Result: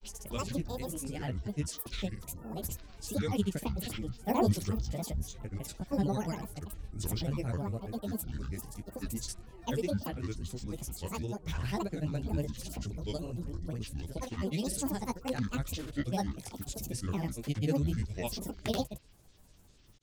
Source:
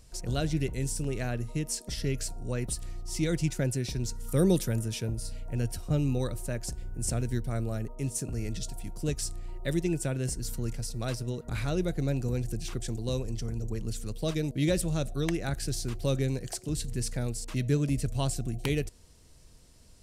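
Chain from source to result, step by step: chorus 2.1 Hz, delay 16 ms, depth 5 ms; grains, pitch spread up and down by 12 st

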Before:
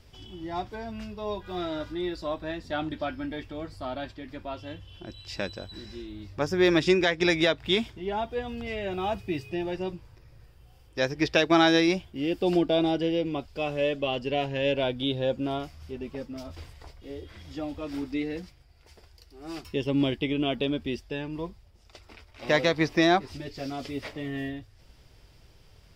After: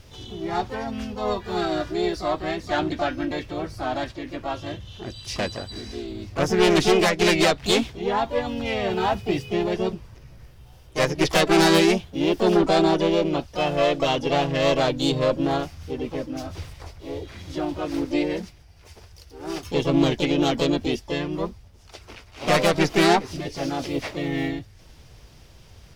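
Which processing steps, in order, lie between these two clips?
added harmonics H 4 -10 dB, 5 -9 dB, 8 -36 dB, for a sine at -9 dBFS; harmoniser +3 st -3 dB, +12 st -15 dB; gain -3.5 dB

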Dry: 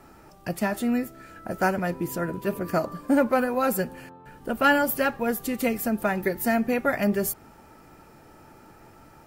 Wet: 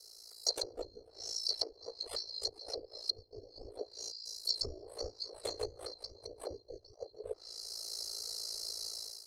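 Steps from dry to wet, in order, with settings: band-swap scrambler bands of 4000 Hz; 3.89–6.1 chorus 1.5 Hz, depth 4.4 ms; AGC gain up to 15 dB; treble ducked by the level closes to 320 Hz, closed at -11 dBFS; ring modulator 28 Hz; EQ curve 100 Hz 0 dB, 180 Hz -24 dB, 420 Hz +7 dB, 1300 Hz -13 dB, 2000 Hz -15 dB, 3200 Hz -16 dB, 8600 Hz +8 dB, 15000 Hz -1 dB; gain +3 dB

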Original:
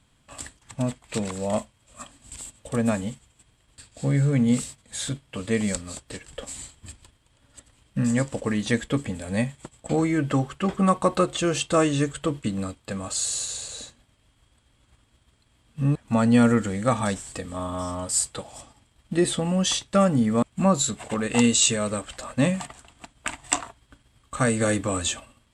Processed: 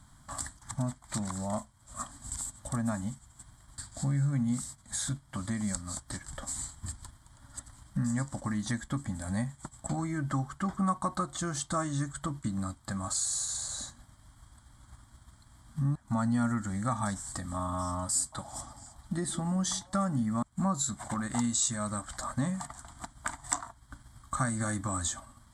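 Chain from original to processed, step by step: compressor 2:1, threshold -44 dBFS, peak gain reduction 16 dB; fixed phaser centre 1100 Hz, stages 4; 17.98–20.23 delay with a stepping band-pass 0.171 s, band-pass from 300 Hz, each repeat 1.4 oct, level -11 dB; gain +8 dB

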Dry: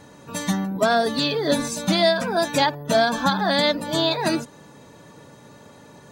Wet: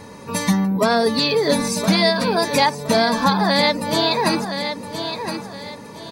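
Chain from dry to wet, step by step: ripple EQ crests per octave 0.88, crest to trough 7 dB; feedback echo 1.016 s, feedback 28%, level -11.5 dB; in parallel at +2 dB: compressor, threshold -27 dBFS, peak gain reduction 12 dB

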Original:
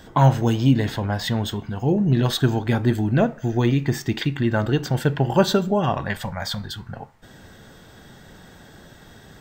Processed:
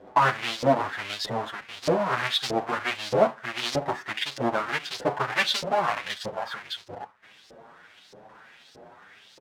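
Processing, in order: half-waves squared off; LFO band-pass saw up 1.6 Hz 480–5200 Hz; endless flanger 7.8 ms +1 Hz; gain +5 dB

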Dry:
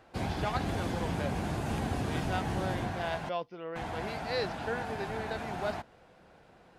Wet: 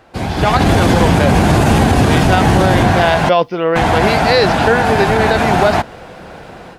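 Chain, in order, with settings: AGC gain up to 13.5 dB; maximiser +12.5 dB; gain -1 dB

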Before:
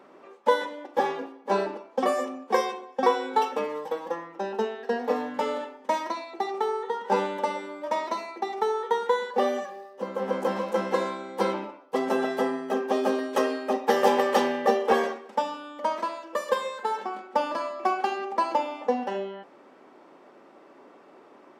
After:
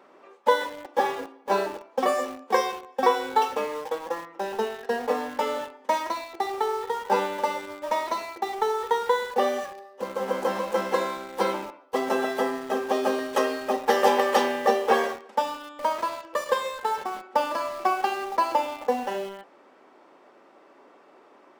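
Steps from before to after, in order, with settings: low shelf 280 Hz -9 dB; in parallel at -9 dB: bit-crush 6-bit

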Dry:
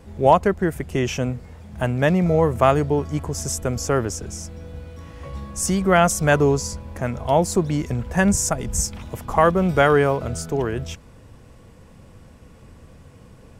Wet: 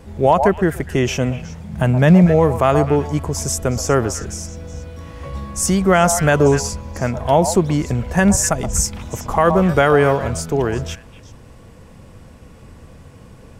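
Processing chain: 1.37–2.25 bell 160 Hz +14 dB -> +6.5 dB 0.64 oct; delay with a stepping band-pass 0.123 s, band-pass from 770 Hz, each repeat 1.4 oct, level -8.5 dB; maximiser +6.5 dB; gain -2 dB

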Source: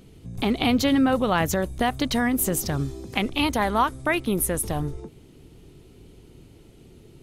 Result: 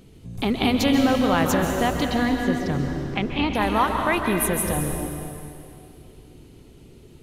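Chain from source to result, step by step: 2.07–3.55 air absorption 200 m; plate-style reverb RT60 2.5 s, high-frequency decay 0.95×, pre-delay 0.12 s, DRR 2.5 dB

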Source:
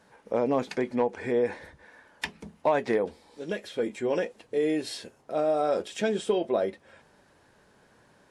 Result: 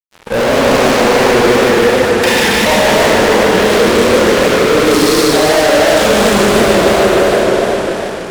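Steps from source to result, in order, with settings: Schroeder reverb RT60 2.9 s, combs from 30 ms, DRR -10 dB; fuzz box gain 35 dB, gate -44 dBFS; warbling echo 0.151 s, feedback 66%, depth 175 cents, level -3 dB; gain +2 dB

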